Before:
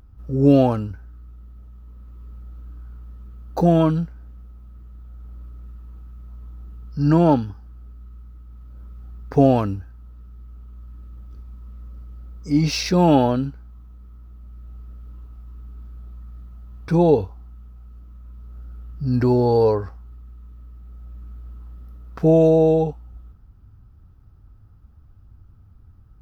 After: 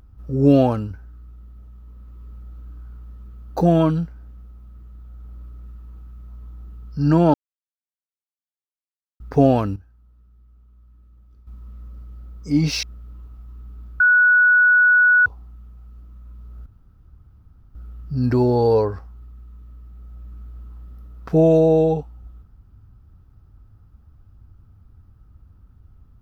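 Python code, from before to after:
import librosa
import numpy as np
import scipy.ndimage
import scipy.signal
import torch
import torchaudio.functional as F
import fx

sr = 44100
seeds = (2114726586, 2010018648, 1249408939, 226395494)

y = fx.edit(x, sr, fx.silence(start_s=7.34, length_s=1.86),
    fx.clip_gain(start_s=9.76, length_s=1.71, db=-11.0),
    fx.cut(start_s=12.83, length_s=1.99),
    fx.bleep(start_s=15.99, length_s=1.26, hz=1470.0, db=-10.5),
    fx.insert_room_tone(at_s=18.65, length_s=1.09), tone=tone)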